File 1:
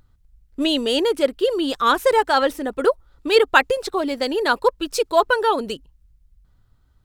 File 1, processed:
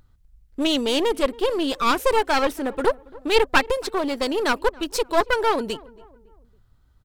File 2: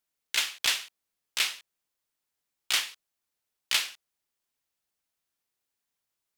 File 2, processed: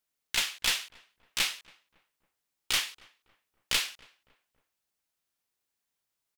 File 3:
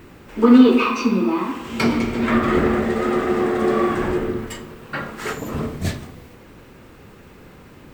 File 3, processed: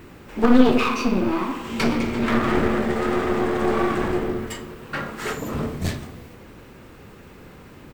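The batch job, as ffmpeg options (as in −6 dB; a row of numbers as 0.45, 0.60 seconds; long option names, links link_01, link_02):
-filter_complex "[0:a]aeval=exprs='clip(val(0),-1,0.0596)':channel_layout=same,asplit=2[link_01][link_02];[link_02]adelay=278,lowpass=frequency=1300:poles=1,volume=-21.5dB,asplit=2[link_03][link_04];[link_04]adelay=278,lowpass=frequency=1300:poles=1,volume=0.47,asplit=2[link_05][link_06];[link_06]adelay=278,lowpass=frequency=1300:poles=1,volume=0.47[link_07];[link_03][link_05][link_07]amix=inputs=3:normalize=0[link_08];[link_01][link_08]amix=inputs=2:normalize=0"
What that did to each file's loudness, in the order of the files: −2.5, −1.5, −3.0 LU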